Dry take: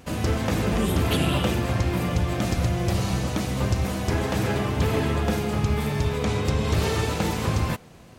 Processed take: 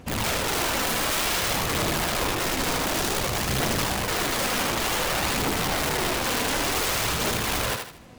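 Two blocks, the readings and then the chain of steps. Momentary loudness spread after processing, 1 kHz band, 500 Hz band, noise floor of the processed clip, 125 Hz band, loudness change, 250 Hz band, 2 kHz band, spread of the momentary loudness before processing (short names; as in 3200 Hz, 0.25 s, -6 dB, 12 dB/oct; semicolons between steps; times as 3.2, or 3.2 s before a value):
2 LU, +3.5 dB, -1.5 dB, -38 dBFS, -10.0 dB, +0.5 dB, -5.5 dB, +5.5 dB, 3 LU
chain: high shelf 5700 Hz -4 dB; wrapped overs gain 22 dB; phaser 0.55 Hz, delay 4.3 ms, feedback 31%; thinning echo 78 ms, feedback 36%, level -4.5 dB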